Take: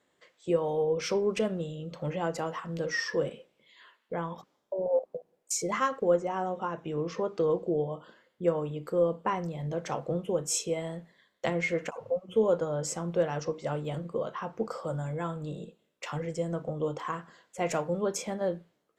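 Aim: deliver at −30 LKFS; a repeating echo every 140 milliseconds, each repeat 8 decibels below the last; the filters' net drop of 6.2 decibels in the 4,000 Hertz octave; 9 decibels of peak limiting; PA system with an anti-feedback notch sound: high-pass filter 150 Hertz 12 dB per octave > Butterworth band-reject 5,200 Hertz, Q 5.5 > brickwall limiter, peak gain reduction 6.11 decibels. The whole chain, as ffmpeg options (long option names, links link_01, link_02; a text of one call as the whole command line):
ffmpeg -i in.wav -af "equalizer=frequency=4000:width_type=o:gain=-4.5,alimiter=limit=-23.5dB:level=0:latency=1,highpass=150,asuperstop=centerf=5200:order=8:qfactor=5.5,aecho=1:1:140|280|420|560|700:0.398|0.159|0.0637|0.0255|0.0102,volume=6.5dB,alimiter=limit=-20dB:level=0:latency=1" out.wav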